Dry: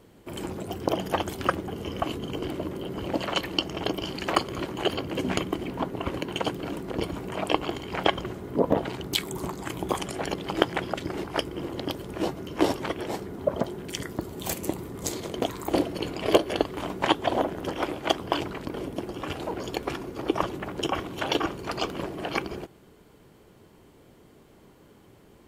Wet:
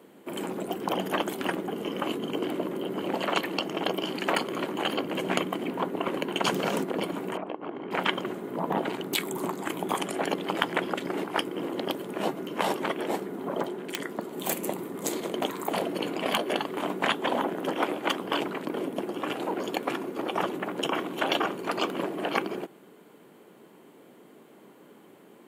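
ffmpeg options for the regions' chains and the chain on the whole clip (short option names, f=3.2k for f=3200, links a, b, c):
-filter_complex "[0:a]asettb=1/sr,asplit=3[a][b][c];[a]atrim=end=6.444[d];[b]atrim=start=6.44:end=6.84,asetpts=PTS-STARTPTS,afade=t=in:d=0.004:c=qsin,afade=t=out:st=0.396:d=0.004:c=qsin,equalizer=f=5.8k:t=o:w=0.74:g=10.5,acontrast=69[e];[c]atrim=start=6.836[f];[d][e]acrossfade=d=0.004:c1=hsin:c2=qsin[g];[g][f]acrossfade=d=0.004:c1=qsin:c2=hsin,asettb=1/sr,asplit=3[h][i][j];[h]atrim=end=7.374[k];[i]atrim=start=7.37:end=7.91,asetpts=PTS-STARTPTS,afade=t=in:d=0.004:c=qsin,afade=t=out:st=0.536:d=0.004:c=qsin,lowpass=1.5k,acompressor=threshold=-34dB:ratio=5:attack=3.2:release=140:knee=1:detection=peak[l];[j]atrim=start=7.906[m];[k][l]acrossfade=d=0.004:c1=hsin:c2=qsin[n];[n][m]acrossfade=d=0.004:c1=qsin:c2=hsin,asettb=1/sr,asplit=3[o][p][q];[o]atrim=end=13.684[r];[p]atrim=start=13.68:end=14.34,asetpts=PTS-STARTPTS,afade=t=in:d=0.004:c=qsin,afade=t=out:st=0.656:d=0.004:c=qsin,highpass=f=190:p=1,highshelf=f=11k:g=-11,aeval=exprs='(mod(5.31*val(0)+1,2)-1)/5.31':c=same[s];[q]atrim=start=14.336[t];[r][s]acrossfade=d=0.004:c1=hsin:c2=qsin[u];[u][t]acrossfade=d=0.004:c1=qsin:c2=hsin,highpass=f=190:w=0.5412,highpass=f=190:w=1.3066,afftfilt=real='re*lt(hypot(re,im),0.282)':imag='im*lt(hypot(re,im),0.282)':win_size=1024:overlap=0.75,equalizer=f=5.3k:w=1.6:g=-9,volume=3dB"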